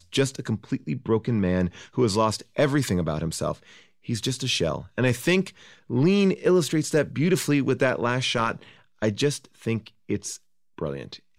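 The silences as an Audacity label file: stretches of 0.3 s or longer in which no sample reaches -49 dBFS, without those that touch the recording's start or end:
10.380000	10.780000	silence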